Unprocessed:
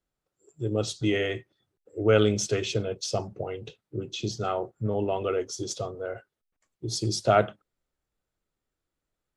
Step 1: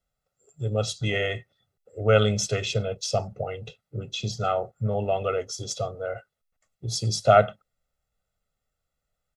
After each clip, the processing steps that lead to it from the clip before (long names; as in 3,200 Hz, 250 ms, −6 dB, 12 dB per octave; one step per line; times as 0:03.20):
comb filter 1.5 ms, depth 79%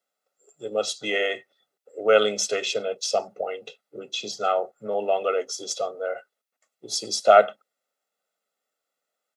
high-pass filter 280 Hz 24 dB per octave
level +2.5 dB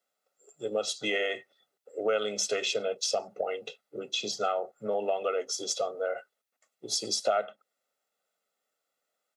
downward compressor 4 to 1, threshold −26 dBFS, peak gain reduction 14.5 dB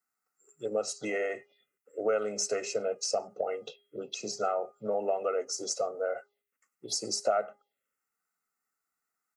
hum removal 408.5 Hz, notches 8
phaser swept by the level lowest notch 570 Hz, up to 3,400 Hz, full sweep at −31 dBFS